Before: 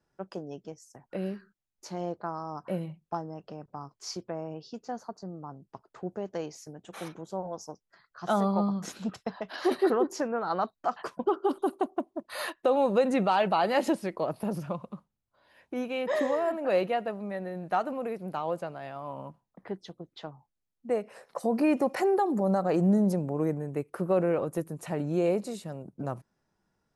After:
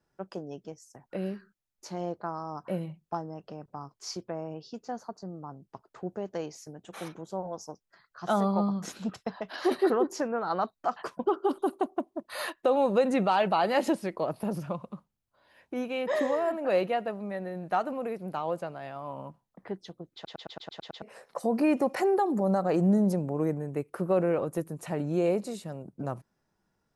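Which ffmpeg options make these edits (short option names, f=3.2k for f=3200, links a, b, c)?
-filter_complex "[0:a]asplit=9[a][b][c][d][e][f][g][h][i];[a]atrim=end=20.252[j];[b]atrim=start=20.138:end=20.252[k];[c]atrim=start=20.138:end=20.252[l];[d]atrim=start=20.138:end=20.252[m];[e]atrim=start=20.138:end=20.252[n];[f]atrim=start=20.138:end=20.252[o];[g]atrim=start=20.138:end=20.252[p];[h]atrim=start=20.138:end=20.252[q];[i]atrim=start=21.018[r];[j][k]acrossfade=d=0.004:c1=hsin:c2=hsin[s];[s][l]acrossfade=d=0.004:c1=hsin:c2=hsin[t];[t][m]acrossfade=d=0.004:c1=hsin:c2=hsin[u];[u][n]acrossfade=d=0.004:c1=hsin:c2=hsin[v];[v][o]acrossfade=d=0.004:c1=hsin:c2=hsin[w];[w][p]acrossfade=d=0.004:c1=hsin:c2=hsin[x];[x][q]acrossfade=d=0.004:c1=hsin:c2=hsin[y];[y][r]acrossfade=d=0.004:c1=hsin:c2=hsin"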